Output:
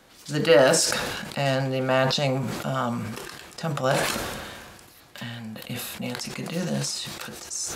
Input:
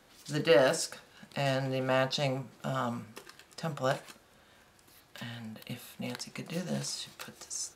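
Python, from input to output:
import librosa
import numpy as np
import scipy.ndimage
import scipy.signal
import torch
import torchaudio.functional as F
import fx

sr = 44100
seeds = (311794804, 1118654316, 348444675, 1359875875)

y = fx.sustainer(x, sr, db_per_s=31.0)
y = y * 10.0 ** (6.0 / 20.0)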